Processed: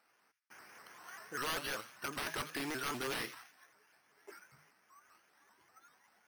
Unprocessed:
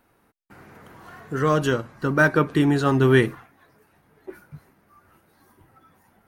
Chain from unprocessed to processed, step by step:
low-pass filter 3,300 Hz
first difference
mains-hum notches 50/100/150 Hz
in parallel at −2 dB: downward compressor, threshold −49 dBFS, peak gain reduction 19 dB
on the sum: wrap-around overflow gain 32.5 dB
bad sample-rate conversion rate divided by 6×, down filtered, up hold
delay with a high-pass on its return 85 ms, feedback 42%, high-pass 1,900 Hz, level −11 dB
pitch modulation by a square or saw wave saw up 5.1 Hz, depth 160 cents
level +3.5 dB

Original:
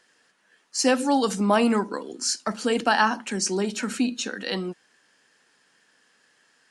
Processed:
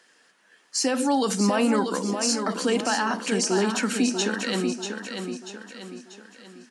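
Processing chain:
high-pass filter 160 Hz
brickwall limiter −18.5 dBFS, peak gain reduction 11.5 dB
repeating echo 639 ms, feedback 44%, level −6.5 dB
level +3.5 dB

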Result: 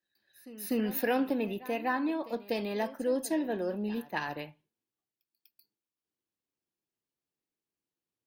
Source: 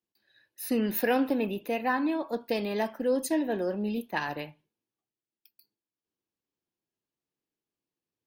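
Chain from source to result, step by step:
echo ahead of the sound 246 ms −18 dB
level −3 dB

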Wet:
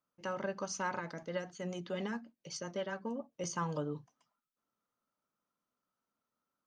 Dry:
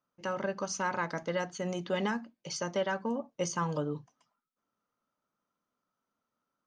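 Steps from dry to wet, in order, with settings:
0:00.99–0:03.44: rotating-speaker cabinet horn 7.5 Hz
level −4 dB

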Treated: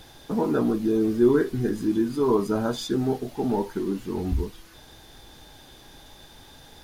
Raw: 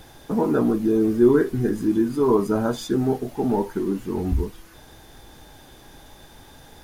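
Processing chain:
parametric band 4,000 Hz +6 dB 1.2 octaves
level −3 dB

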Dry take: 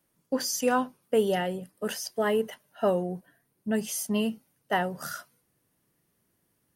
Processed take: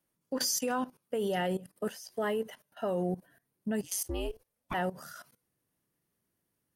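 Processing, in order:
output level in coarse steps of 17 dB
0:03.82–0:04.73: ring modulation 76 Hz → 470 Hz
level +3.5 dB

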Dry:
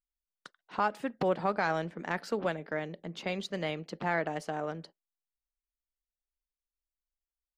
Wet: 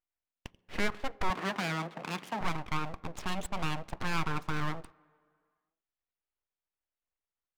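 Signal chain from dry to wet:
adaptive Wiener filter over 9 samples
in parallel at +3 dB: brickwall limiter −27 dBFS, peak gain reduction 11 dB
on the sum: asymmetric clip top −22.5 dBFS
bass and treble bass −10 dB, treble −8 dB
full-wave rectification
0:01.30–0:02.41: Butterworth high-pass 150 Hz
on a send at −22 dB: convolution reverb RT60 2.2 s, pre-delay 3 ms

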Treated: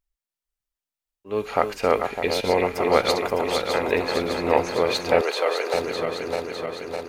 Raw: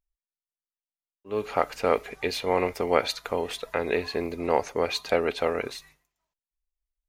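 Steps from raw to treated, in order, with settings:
feedback delay that plays each chunk backwards 303 ms, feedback 80%, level −6 dB
0:02.13–0:02.64: parametric band 1,200 Hz −13 dB 0.28 octaves
0:05.21–0:05.74: high-pass filter 420 Hz 24 dB per octave
level +3 dB

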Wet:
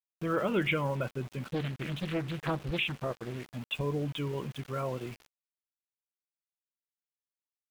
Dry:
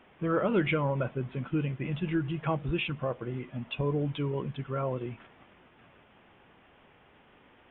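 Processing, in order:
high-shelf EQ 2,900 Hz +11.5 dB
centre clipping without the shift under −41.5 dBFS
0:01.46–0:03.46: highs frequency-modulated by the lows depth 0.74 ms
level −3 dB

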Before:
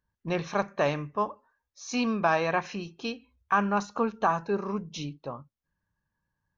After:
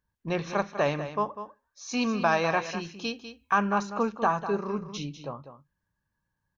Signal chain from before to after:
0:02.01–0:03.59: high-shelf EQ 4,500 Hz +8 dB
single-tap delay 198 ms −11 dB

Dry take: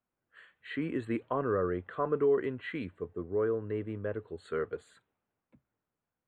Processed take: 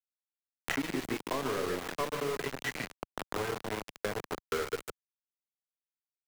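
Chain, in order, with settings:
gain on a spectral selection 0:02.11–0:03.99, 210–1,500 Hz −8 dB
soft clipping −26 dBFS, distortion −16 dB
high-shelf EQ 2,000 Hz +7.5 dB
repeating echo 147 ms, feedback 42%, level −6.5 dB
on a send at −8 dB: convolution reverb RT60 0.25 s, pre-delay 5 ms
on the sum: centre clipping without the shift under −32 dBFS
parametric band 83 Hz −4.5 dB 1.7 octaves
multiband upward and downward compressor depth 100%

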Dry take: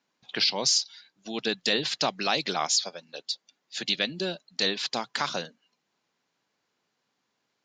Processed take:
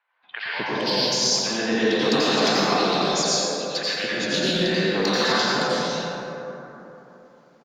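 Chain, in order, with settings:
high-shelf EQ 5,300 Hz −6.5 dB
downward compressor 3 to 1, threshold −32 dBFS, peak gain reduction 8.5 dB
tuned comb filter 510 Hz, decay 0.64 s, mix 70%
sine wavefolder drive 9 dB, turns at −18 dBFS
three-band delay without the direct sound mids, lows, highs 230/460 ms, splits 740/2,700 Hz
dense smooth reverb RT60 3.4 s, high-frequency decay 0.35×, pre-delay 75 ms, DRR −9 dB
level +4.5 dB

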